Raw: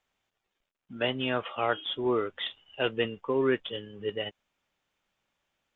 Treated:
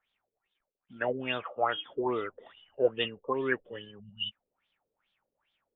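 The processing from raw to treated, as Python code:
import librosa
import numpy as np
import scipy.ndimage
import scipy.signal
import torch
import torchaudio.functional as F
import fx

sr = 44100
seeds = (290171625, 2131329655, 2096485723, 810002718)

y = fx.spec_repair(x, sr, seeds[0], start_s=4.02, length_s=0.39, low_hz=220.0, high_hz=2700.0, source='after')
y = fx.filter_lfo_lowpass(y, sr, shape='sine', hz=2.4, low_hz=430.0, high_hz=3600.0, q=7.0)
y = fx.rider(y, sr, range_db=10, speed_s=0.5)
y = y * 10.0 ** (-6.0 / 20.0)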